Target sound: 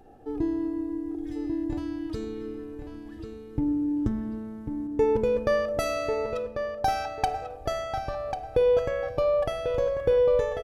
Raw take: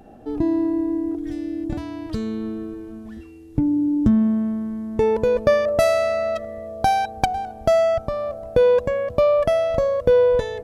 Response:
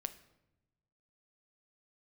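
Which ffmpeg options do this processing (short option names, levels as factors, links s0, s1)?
-filter_complex "[0:a]asettb=1/sr,asplit=3[s0][s1][s2];[s0]atrim=end=4.874[s3];[s1]atrim=start=4.87:end=7.5,asetpts=PTS-STARTPTS,afade=t=in:d=0.004:c=qsin,afade=t=out:st=2.626:d=0.004:c=qsin,agate=range=0.0224:threshold=0.0562:ratio=3:detection=peak[s4];[s2]atrim=start=7.496[s5];[s3][s4]acrossfade=d=0.004:c1=hsin:c2=qsin[s6];[s6][s5]acrossfade=d=0.004:c1=qsin:c2=hsin,aecho=1:1:2.4:0.51,asplit=2[s7][s8];[s8]adelay=1093,lowpass=f=4300:p=1,volume=0.447,asplit=2[s9][s10];[s10]adelay=1093,lowpass=f=4300:p=1,volume=0.25,asplit=2[s11][s12];[s12]adelay=1093,lowpass=f=4300:p=1,volume=0.25[s13];[s7][s9][s11][s13]amix=inputs=4:normalize=0[s14];[1:a]atrim=start_sample=2205[s15];[s14][s15]afir=irnorm=-1:irlink=0,volume=0.531"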